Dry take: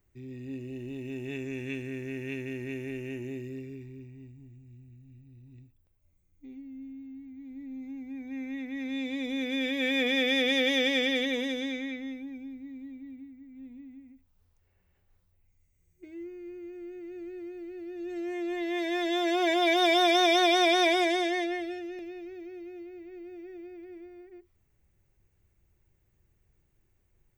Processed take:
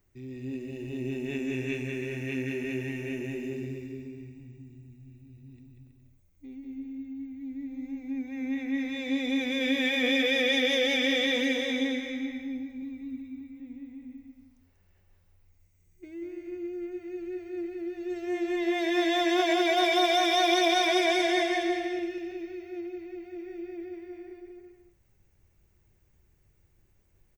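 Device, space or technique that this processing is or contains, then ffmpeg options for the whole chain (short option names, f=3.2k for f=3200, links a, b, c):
clipper into limiter: -filter_complex "[0:a]asoftclip=type=hard:threshold=-15.5dB,alimiter=limit=-21dB:level=0:latency=1,bandreject=f=60:t=h:w=6,bandreject=f=120:t=h:w=6,asettb=1/sr,asplit=3[a][b][c];[a]atrim=end=12.824[d];[b]atrim=start=12.82:end=13.41,asetpts=PTS-STARTPTS,afade=t=in:d=0.004:c=qsin,afade=t=out:st=0.586:d=0.004:c=qsin,aecho=1:1:0.8:0.72,atrim=end_sample=26019[e];[c]atrim=start=13.406[f];[d][e]acrossfade=d=0.004:c1=hsin:c2=qsin[g];[g][f]acrossfade=d=0.004:c1=qsin:c2=hsin,equalizer=f=5.5k:w=3.1:g=3,aecho=1:1:190|323|416.1|481.3|526.9:0.631|0.398|0.251|0.158|0.1,volume=2dB"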